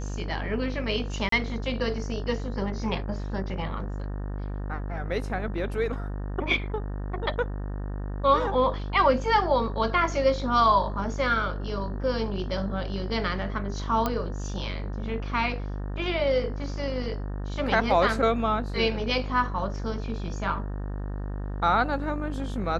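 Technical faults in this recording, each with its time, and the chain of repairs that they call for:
buzz 50 Hz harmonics 37 -32 dBFS
1.29–1.32 s: dropout 33 ms
14.06 s: pop -12 dBFS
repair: de-click; de-hum 50 Hz, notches 37; interpolate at 1.29 s, 33 ms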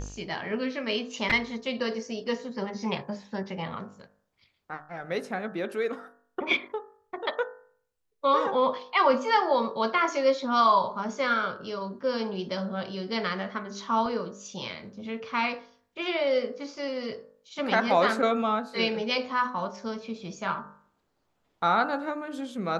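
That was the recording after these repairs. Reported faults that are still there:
nothing left

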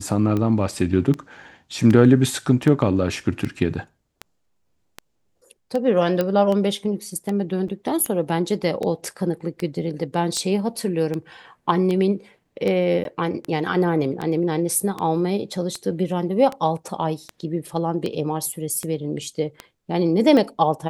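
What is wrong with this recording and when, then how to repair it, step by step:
tick 78 rpm -14 dBFS
6.21 s: pop -9 dBFS
7.68 s: dropout 5 ms
13.04–13.05 s: dropout 12 ms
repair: de-click; interpolate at 7.68 s, 5 ms; interpolate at 13.04 s, 12 ms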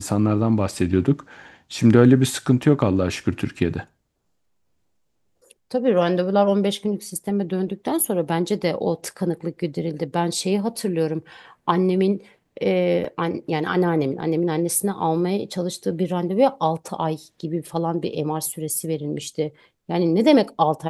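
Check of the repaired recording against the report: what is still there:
nothing left

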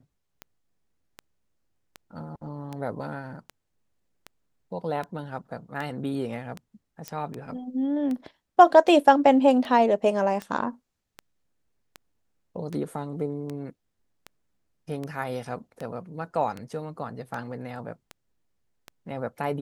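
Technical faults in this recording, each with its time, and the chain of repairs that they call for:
tick 78 rpm -21 dBFS
7.08 s: pop -16 dBFS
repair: de-click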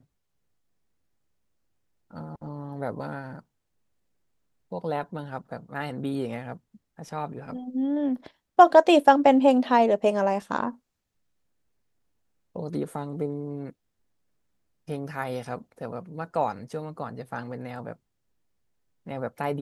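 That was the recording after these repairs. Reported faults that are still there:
nothing left

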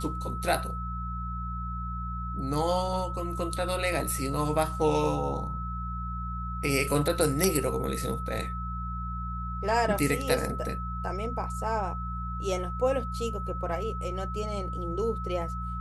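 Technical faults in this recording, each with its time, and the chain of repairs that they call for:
hum 60 Hz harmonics 3 -35 dBFS
whine 1.3 kHz -36 dBFS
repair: band-stop 1.3 kHz, Q 30; de-hum 60 Hz, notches 3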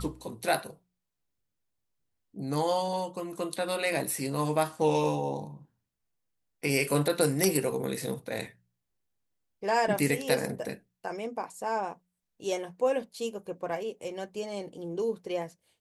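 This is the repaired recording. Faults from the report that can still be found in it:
nothing left

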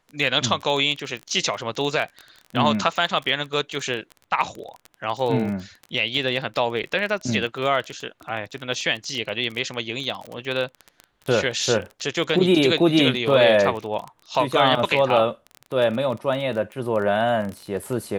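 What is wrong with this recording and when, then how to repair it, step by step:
crackle 20 per s -27 dBFS
6.83–6.84 s: dropout 7.4 ms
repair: de-click; interpolate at 6.83 s, 7.4 ms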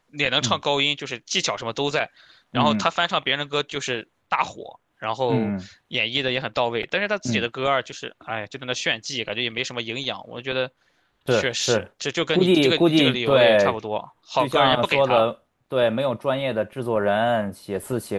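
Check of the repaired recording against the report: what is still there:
nothing left

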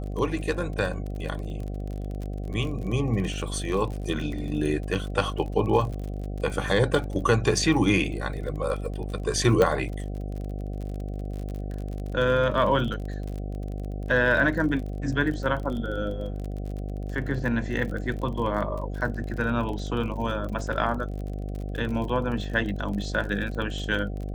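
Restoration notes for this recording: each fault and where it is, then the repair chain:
buzz 50 Hz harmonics 15 -32 dBFS
crackle 40 per s -33 dBFS
9.62 s: pop -10 dBFS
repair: de-click; de-hum 50 Hz, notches 15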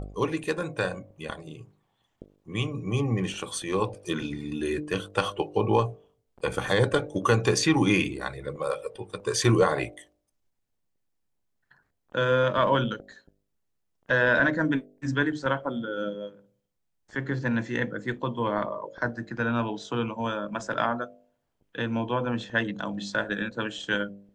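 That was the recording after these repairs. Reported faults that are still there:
nothing left

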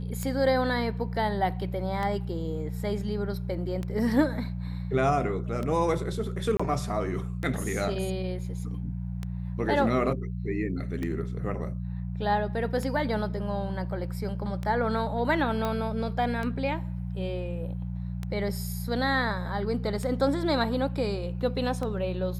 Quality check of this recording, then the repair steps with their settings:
hum 60 Hz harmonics 3 -33 dBFS
tick 33 1/3 rpm -20 dBFS
6.57–6.59 s: dropout 25 ms
15.65 s: pop -16 dBFS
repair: de-click; de-hum 60 Hz, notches 3; interpolate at 6.57 s, 25 ms

